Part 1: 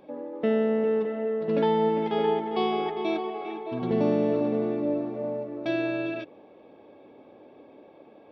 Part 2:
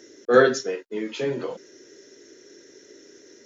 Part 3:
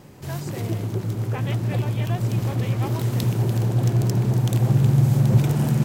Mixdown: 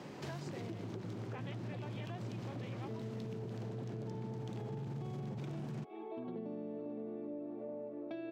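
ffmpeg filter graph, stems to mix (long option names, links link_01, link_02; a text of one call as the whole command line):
ffmpeg -i stem1.wav -i stem2.wav -i stem3.wav -filter_complex "[0:a]tiltshelf=frequency=860:gain=4.5,adelay=2450,volume=-8.5dB[link_01];[2:a]volume=0.5dB,alimiter=limit=-17dB:level=0:latency=1:release=10,volume=0dB[link_02];[link_01][link_02]amix=inputs=2:normalize=0,acrossover=split=230[link_03][link_04];[link_04]acompressor=threshold=-35dB:ratio=3[link_05];[link_03][link_05]amix=inputs=2:normalize=0,acrossover=split=160 6300:gain=0.126 1 0.1[link_06][link_07][link_08];[link_06][link_07][link_08]amix=inputs=3:normalize=0,acompressor=threshold=-41dB:ratio=5" out.wav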